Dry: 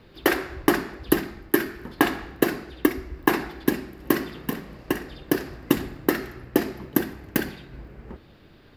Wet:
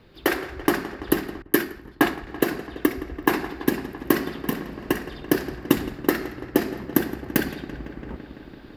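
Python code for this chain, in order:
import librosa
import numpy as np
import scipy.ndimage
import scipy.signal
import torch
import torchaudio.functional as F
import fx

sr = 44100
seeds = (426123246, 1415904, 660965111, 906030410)

y = fx.echo_filtered(x, sr, ms=168, feedback_pct=81, hz=4800.0, wet_db=-15.0)
y = fx.rider(y, sr, range_db=4, speed_s=2.0)
y = fx.band_widen(y, sr, depth_pct=100, at=(1.42, 2.27))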